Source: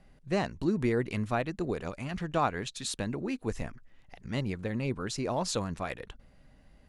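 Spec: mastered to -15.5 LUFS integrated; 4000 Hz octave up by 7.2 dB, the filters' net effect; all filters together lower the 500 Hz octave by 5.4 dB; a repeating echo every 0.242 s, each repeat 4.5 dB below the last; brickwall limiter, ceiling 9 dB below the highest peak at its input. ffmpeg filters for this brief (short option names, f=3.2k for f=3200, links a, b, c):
-af "equalizer=f=500:t=o:g=-7.5,equalizer=f=4k:t=o:g=8.5,alimiter=limit=-23.5dB:level=0:latency=1,aecho=1:1:242|484|726|968|1210|1452|1694|1936|2178:0.596|0.357|0.214|0.129|0.0772|0.0463|0.0278|0.0167|0.01,volume=18.5dB"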